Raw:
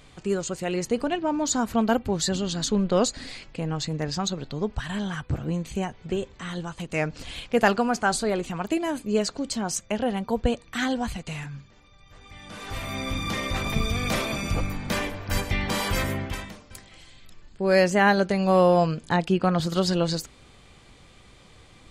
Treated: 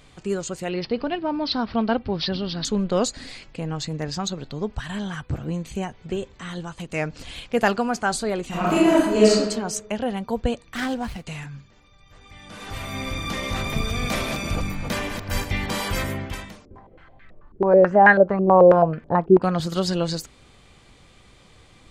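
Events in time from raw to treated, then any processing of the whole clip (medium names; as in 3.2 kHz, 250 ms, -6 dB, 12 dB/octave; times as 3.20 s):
0.69–2.65 s: careless resampling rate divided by 4×, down none, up filtered
8.48–9.36 s: reverb throw, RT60 1.1 s, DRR -8.5 dB
10.75–11.25 s: sliding maximum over 5 samples
12.44–15.66 s: chunks repeated in reverse 163 ms, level -6 dB
16.65–19.42 s: step-sequenced low-pass 9.2 Hz 380–1800 Hz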